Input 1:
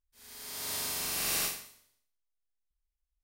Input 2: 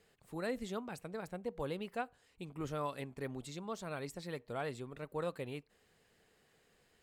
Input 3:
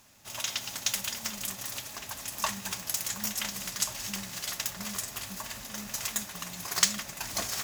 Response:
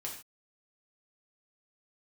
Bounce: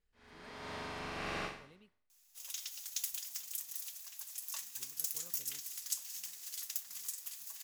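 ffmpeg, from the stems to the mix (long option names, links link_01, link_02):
-filter_complex "[0:a]lowpass=1900,volume=1dB[link_01];[1:a]equalizer=frequency=580:width_type=o:width=1.2:gain=-6.5,volume=-19dB,asplit=3[link_02][link_03][link_04];[link_02]atrim=end=1.93,asetpts=PTS-STARTPTS,afade=type=out:start_time=1.926:duration=0.004:curve=hsin[link_05];[link_03]atrim=start=1.93:end=4.75,asetpts=PTS-STARTPTS,volume=0[link_06];[link_04]atrim=start=4.75,asetpts=PTS-STARTPTS,afade=type=in:duration=0.004:curve=hsin[link_07];[link_05][link_06][link_07]concat=n=3:v=0:a=1[link_08];[2:a]aderivative,adelay=2100,volume=-7.5dB[link_09];[link_01][link_08][link_09]amix=inputs=3:normalize=0"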